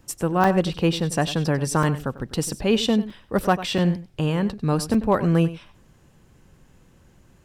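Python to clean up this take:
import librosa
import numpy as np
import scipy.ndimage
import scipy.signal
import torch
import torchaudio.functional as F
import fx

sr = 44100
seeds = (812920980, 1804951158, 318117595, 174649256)

y = fx.fix_declip(x, sr, threshold_db=-8.0)
y = fx.fix_interpolate(y, sr, at_s=(0.44, 1.83, 2.18, 3.1, 3.78, 4.94), length_ms=3.9)
y = fx.fix_echo_inverse(y, sr, delay_ms=96, level_db=-15.0)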